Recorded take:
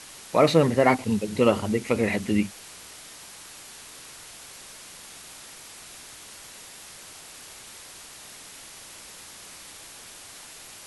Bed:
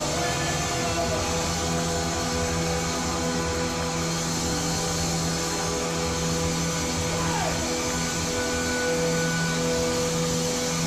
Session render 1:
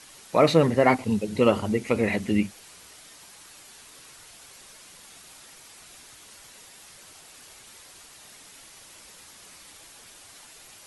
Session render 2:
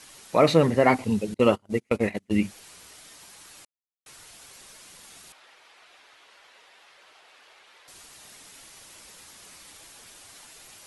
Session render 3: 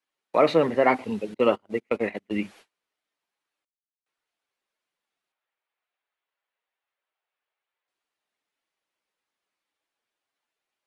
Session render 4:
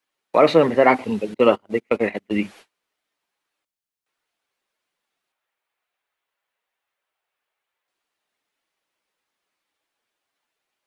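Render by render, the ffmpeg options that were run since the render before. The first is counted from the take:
ffmpeg -i in.wav -af "afftdn=noise_reduction=6:noise_floor=-45" out.wav
ffmpeg -i in.wav -filter_complex "[0:a]asettb=1/sr,asplit=3[link_01][link_02][link_03];[link_01]atrim=end=1.344[link_04];[link_02]atrim=start=1.34:end=2.41,asetpts=PTS-STARTPTS,afade=type=in:duration=0.004:curve=qsin,afade=type=out:start_time=1.066:duration=0.004:curve=qsin,agate=range=-34dB:threshold=-25dB:ratio=16:release=100:detection=peak[link_05];[link_03]atrim=start=2.406[link_06];[link_04][link_05]acrossfade=duration=0.004:curve1=hsin:curve2=qsin[link_07];[link_07][link_06]acrossfade=duration=0.004:curve1=qsin:curve2=hsin,asettb=1/sr,asplit=3[link_08][link_09][link_10];[link_08]atrim=end=5.324[link_11];[link_09]atrim=start=5.32:end=7.88,asetpts=PTS-STARTPTS,afade=type=in:duration=0.004:curve=qsin,afade=type=out:start_time=2.556:duration=0.004:curve=qsin,acrossover=split=400 3900:gain=0.0794 1 0.0891[link_12][link_13][link_14];[link_12][link_13][link_14]amix=inputs=3:normalize=0[link_15];[link_10]atrim=start=7.876[link_16];[link_11][link_15]acrossfade=duration=0.004:curve1=hsin:curve2=qsin[link_17];[link_17][link_16]acrossfade=duration=0.004:curve1=qsin:curve2=hsin,asplit=3[link_18][link_19][link_20];[link_18]atrim=end=3.65,asetpts=PTS-STARTPTS,afade=type=out:start_time=3.646:duration=0.004:curve=hsin[link_21];[link_19]atrim=start=3.65:end=4.06,asetpts=PTS-STARTPTS,volume=0[link_22];[link_20]atrim=start=4.06,asetpts=PTS-STARTPTS,afade=type=in:duration=0.004:curve=hsin[link_23];[link_21][link_22][link_23]concat=n=3:v=0:a=1" out.wav
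ffmpeg -i in.wav -filter_complex "[0:a]agate=range=-33dB:threshold=-43dB:ratio=16:detection=peak,acrossover=split=240 3700:gain=0.2 1 0.2[link_01][link_02][link_03];[link_01][link_02][link_03]amix=inputs=3:normalize=0" out.wav
ffmpeg -i in.wav -af "volume=5.5dB,alimiter=limit=-2dB:level=0:latency=1" out.wav

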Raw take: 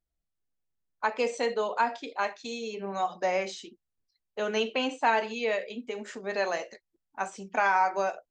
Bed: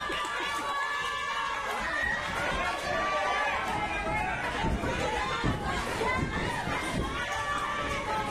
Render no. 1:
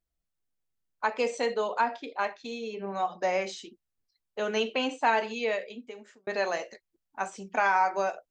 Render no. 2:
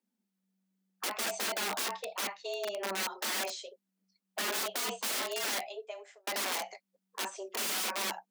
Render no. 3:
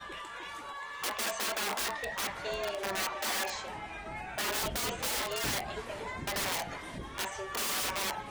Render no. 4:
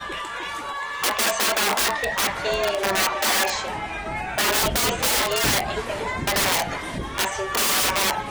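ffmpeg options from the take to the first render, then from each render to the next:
ffmpeg -i in.wav -filter_complex "[0:a]asettb=1/sr,asplit=3[link_01][link_02][link_03];[link_01]atrim=end=1.804[link_04];[link_02]atrim=start=1.8:end=3.22,asetpts=PTS-STARTPTS,afade=type=in:duration=0.004:curve=qsin,afade=type=out:start_time=1.416:duration=0.004:curve=qsin,adynamicsmooth=sensitivity=1.5:basefreq=5000[link_05];[link_03]atrim=start=3.216[link_06];[link_04][link_05]acrossfade=duration=0.004:curve1=hsin:curve2=qsin[link_07];[link_07][link_06]acrossfade=duration=0.004:curve1=qsin:curve2=hsin,asplit=2[link_08][link_09];[link_08]atrim=end=6.27,asetpts=PTS-STARTPTS,afade=type=out:start_time=5.45:duration=0.82[link_10];[link_09]atrim=start=6.27,asetpts=PTS-STARTPTS,afade=type=in:duration=0.004:curve=hsin[link_11];[link_10][link_11]concat=n=2:v=0:a=1" out.wav
ffmpeg -i in.wav -af "aeval=exprs='(mod(26.6*val(0)+1,2)-1)/26.6':channel_layout=same,afreqshift=190" out.wav
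ffmpeg -i in.wav -i bed.wav -filter_complex "[1:a]volume=-11dB[link_01];[0:a][link_01]amix=inputs=2:normalize=0" out.wav
ffmpeg -i in.wav -af "volume=12dB" out.wav

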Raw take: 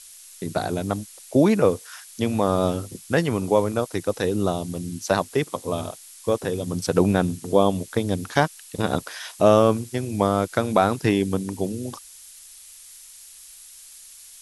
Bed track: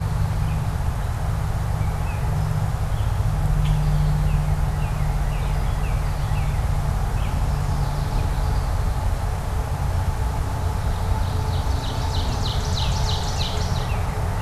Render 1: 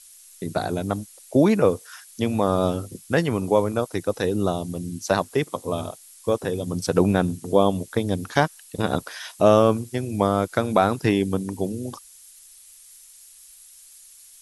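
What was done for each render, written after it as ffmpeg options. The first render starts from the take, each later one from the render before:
ffmpeg -i in.wav -af "afftdn=noise_reduction=6:noise_floor=-46" out.wav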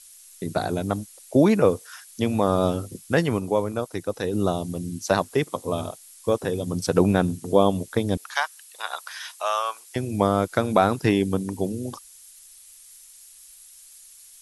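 ffmpeg -i in.wav -filter_complex "[0:a]asettb=1/sr,asplit=3[link_01][link_02][link_03];[link_01]atrim=end=8.174[link_04];[link_02]atrim=start=8.17:end=9.96,asetpts=PTS-STARTPTS,afade=type=in:duration=0.004:curve=qsin,afade=type=out:start_time=1.786:duration=0.004:curve=qsin,highpass=frequency=890:width=0.5412,highpass=frequency=890:width=1.3066[link_05];[link_03]atrim=start=9.956[link_06];[link_04][link_05]acrossfade=duration=0.004:curve1=hsin:curve2=qsin[link_07];[link_07][link_06]acrossfade=duration=0.004:curve1=qsin:curve2=hsin,asplit=3[link_08][link_09][link_10];[link_08]atrim=end=3.392[link_11];[link_09]atrim=start=3.388:end=4.332,asetpts=PTS-STARTPTS,volume=-3.5dB[link_12];[link_10]atrim=start=4.328[link_13];[link_11][link_12]acrossfade=duration=0.004:curve1=hsin:curve2=hsin[link_14];[link_14][link_13]acrossfade=duration=0.004:curve1=hsin:curve2=hsin" out.wav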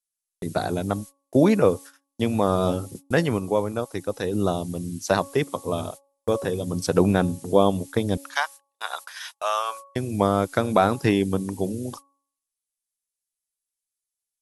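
ffmpeg -i in.wav -af "agate=range=-39dB:threshold=-37dB:ratio=16:detection=peak,bandreject=frequency=278.2:width_type=h:width=4,bandreject=frequency=556.4:width_type=h:width=4,bandreject=frequency=834.6:width_type=h:width=4,bandreject=frequency=1112.8:width_type=h:width=4" out.wav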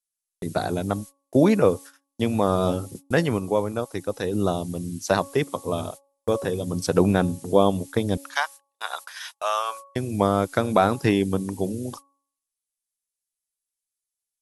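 ffmpeg -i in.wav -af anull out.wav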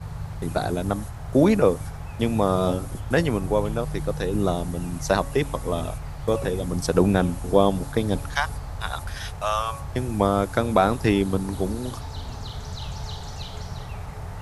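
ffmpeg -i in.wav -i bed.wav -filter_complex "[1:a]volume=-11dB[link_01];[0:a][link_01]amix=inputs=2:normalize=0" out.wav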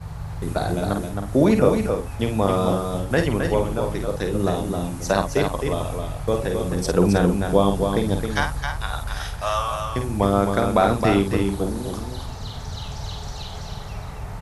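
ffmpeg -i in.wav -filter_complex "[0:a]asplit=2[link_01][link_02];[link_02]adelay=50,volume=-6.5dB[link_03];[link_01][link_03]amix=inputs=2:normalize=0,asplit=2[link_04][link_05];[link_05]aecho=0:1:266:0.531[link_06];[link_04][link_06]amix=inputs=2:normalize=0" out.wav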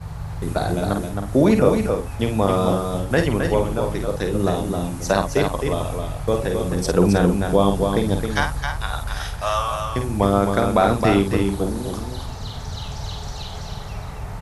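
ffmpeg -i in.wav -af "volume=1.5dB,alimiter=limit=-3dB:level=0:latency=1" out.wav

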